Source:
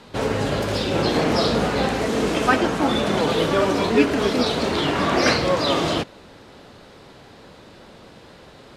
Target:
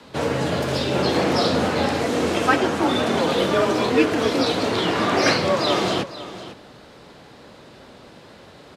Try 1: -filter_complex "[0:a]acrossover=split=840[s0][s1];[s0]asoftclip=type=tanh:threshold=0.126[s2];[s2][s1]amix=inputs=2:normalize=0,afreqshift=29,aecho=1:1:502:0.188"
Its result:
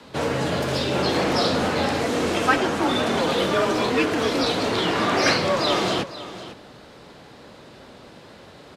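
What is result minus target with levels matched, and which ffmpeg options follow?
saturation: distortion +15 dB
-filter_complex "[0:a]acrossover=split=840[s0][s1];[s0]asoftclip=type=tanh:threshold=0.501[s2];[s2][s1]amix=inputs=2:normalize=0,afreqshift=29,aecho=1:1:502:0.188"

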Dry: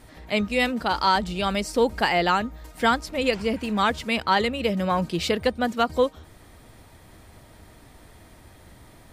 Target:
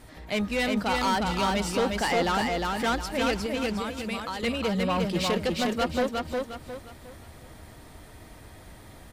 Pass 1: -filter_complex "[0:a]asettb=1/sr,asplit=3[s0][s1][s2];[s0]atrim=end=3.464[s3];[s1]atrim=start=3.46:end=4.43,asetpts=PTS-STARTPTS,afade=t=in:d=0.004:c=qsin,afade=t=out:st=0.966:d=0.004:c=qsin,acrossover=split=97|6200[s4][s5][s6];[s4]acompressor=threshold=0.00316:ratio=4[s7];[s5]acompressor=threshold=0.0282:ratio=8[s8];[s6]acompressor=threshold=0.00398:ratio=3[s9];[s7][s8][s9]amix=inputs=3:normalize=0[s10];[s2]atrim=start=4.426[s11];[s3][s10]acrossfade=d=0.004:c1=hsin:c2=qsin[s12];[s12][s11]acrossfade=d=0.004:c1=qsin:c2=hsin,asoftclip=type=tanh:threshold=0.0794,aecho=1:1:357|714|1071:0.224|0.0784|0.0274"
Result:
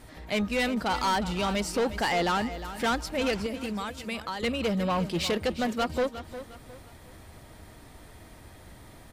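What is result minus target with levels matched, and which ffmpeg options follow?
echo-to-direct -10 dB
-filter_complex "[0:a]asettb=1/sr,asplit=3[s0][s1][s2];[s0]atrim=end=3.464[s3];[s1]atrim=start=3.46:end=4.43,asetpts=PTS-STARTPTS,afade=t=in:d=0.004:c=qsin,afade=t=out:st=0.966:d=0.004:c=qsin,acrossover=split=97|6200[s4][s5][s6];[s4]acompressor=threshold=0.00316:ratio=4[s7];[s5]acompressor=threshold=0.0282:ratio=8[s8];[s6]acompressor=threshold=0.00398:ratio=3[s9];[s7][s8][s9]amix=inputs=3:normalize=0[s10];[s2]atrim=start=4.426[s11];[s3][s10]acrossfade=d=0.004:c1=hsin:c2=qsin[s12];[s12][s11]acrossfade=d=0.004:c1=qsin:c2=hsin,asoftclip=type=tanh:threshold=0.0794,aecho=1:1:357|714|1071|1428|1785:0.708|0.248|0.0867|0.0304|0.0106"

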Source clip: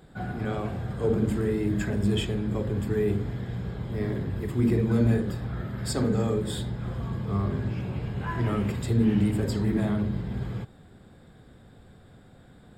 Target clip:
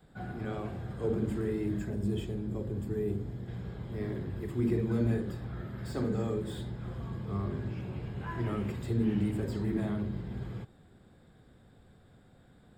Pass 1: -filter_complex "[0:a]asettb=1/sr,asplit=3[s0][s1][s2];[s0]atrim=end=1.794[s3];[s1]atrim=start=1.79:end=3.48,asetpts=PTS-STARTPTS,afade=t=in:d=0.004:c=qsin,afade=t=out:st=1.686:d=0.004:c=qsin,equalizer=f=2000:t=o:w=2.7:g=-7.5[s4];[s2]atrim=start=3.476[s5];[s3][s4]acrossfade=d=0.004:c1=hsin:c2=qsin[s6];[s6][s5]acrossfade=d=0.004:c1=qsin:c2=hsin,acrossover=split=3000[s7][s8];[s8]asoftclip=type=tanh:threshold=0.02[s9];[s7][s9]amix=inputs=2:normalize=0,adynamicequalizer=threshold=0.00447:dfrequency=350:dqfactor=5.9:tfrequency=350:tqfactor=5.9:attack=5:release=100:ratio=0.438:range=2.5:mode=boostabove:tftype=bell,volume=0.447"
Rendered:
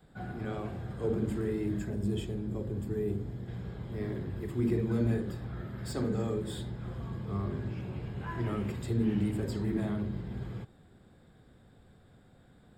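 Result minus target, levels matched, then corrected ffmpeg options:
saturation: distortion -7 dB
-filter_complex "[0:a]asettb=1/sr,asplit=3[s0][s1][s2];[s0]atrim=end=1.794[s3];[s1]atrim=start=1.79:end=3.48,asetpts=PTS-STARTPTS,afade=t=in:d=0.004:c=qsin,afade=t=out:st=1.686:d=0.004:c=qsin,equalizer=f=2000:t=o:w=2.7:g=-7.5[s4];[s2]atrim=start=3.476[s5];[s3][s4]acrossfade=d=0.004:c1=hsin:c2=qsin[s6];[s6][s5]acrossfade=d=0.004:c1=qsin:c2=hsin,acrossover=split=3000[s7][s8];[s8]asoftclip=type=tanh:threshold=0.00562[s9];[s7][s9]amix=inputs=2:normalize=0,adynamicequalizer=threshold=0.00447:dfrequency=350:dqfactor=5.9:tfrequency=350:tqfactor=5.9:attack=5:release=100:ratio=0.438:range=2.5:mode=boostabove:tftype=bell,volume=0.447"

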